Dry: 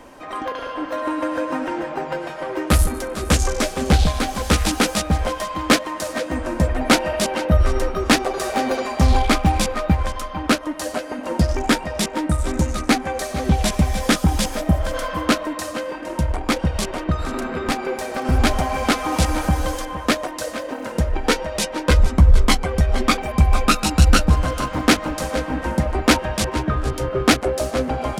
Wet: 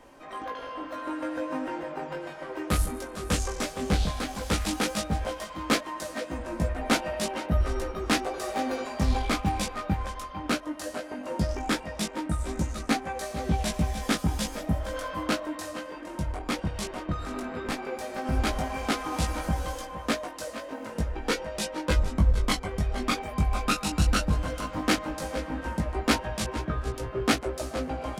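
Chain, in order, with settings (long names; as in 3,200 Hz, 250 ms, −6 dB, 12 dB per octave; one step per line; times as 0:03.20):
chorus effect 0.15 Hz, delay 18 ms, depth 2.3 ms
level −6 dB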